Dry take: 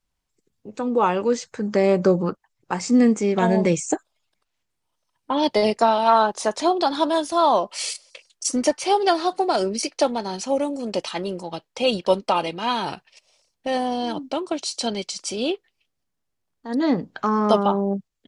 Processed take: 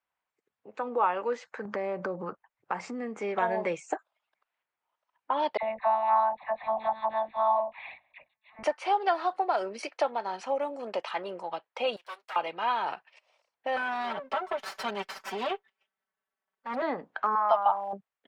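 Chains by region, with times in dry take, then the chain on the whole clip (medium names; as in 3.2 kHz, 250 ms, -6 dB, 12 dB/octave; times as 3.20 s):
1.65–3.20 s: bass shelf 260 Hz +11 dB + compression 5:1, threshold -20 dBFS
5.57–8.63 s: monotone LPC vocoder at 8 kHz 220 Hz + static phaser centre 2.1 kHz, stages 8 + phase dispersion lows, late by 56 ms, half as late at 1.1 kHz
11.96–12.36 s: comb filter that takes the minimum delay 7.8 ms + differentiator + overload inside the chain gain 32 dB
13.76–16.82 s: comb filter that takes the minimum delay 4.6 ms + peaking EQ 270 Hz +5 dB 0.24 oct + comb 5.2 ms, depth 85%
17.35–17.93 s: Chebyshev low-pass 5.2 kHz, order 4 + resonant low shelf 550 Hz -9.5 dB, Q 3 + small samples zeroed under -43 dBFS
whole clip: high-pass 170 Hz 6 dB/octave; three-band isolator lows -18 dB, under 560 Hz, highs -23 dB, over 2.5 kHz; compression 1.5:1, threshold -33 dBFS; trim +2 dB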